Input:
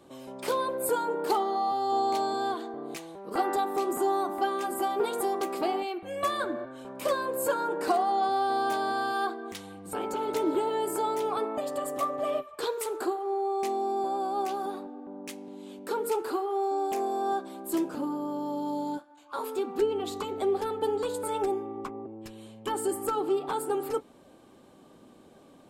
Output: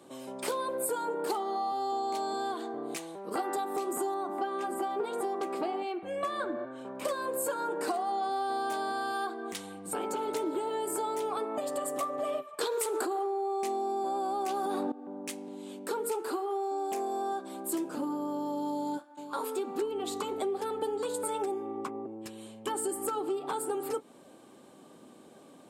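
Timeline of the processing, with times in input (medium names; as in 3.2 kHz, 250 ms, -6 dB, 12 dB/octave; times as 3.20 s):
4.14–7.05 s: low-pass 2.6 kHz 6 dB/octave
12.61–14.92 s: level flattener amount 100%
18.71–19.45 s: echo throw 460 ms, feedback 35%, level -12 dB
whole clip: high-pass 150 Hz 12 dB/octave; peaking EQ 8.6 kHz +5.5 dB 0.63 oct; compression 4:1, threshold -31 dBFS; trim +1 dB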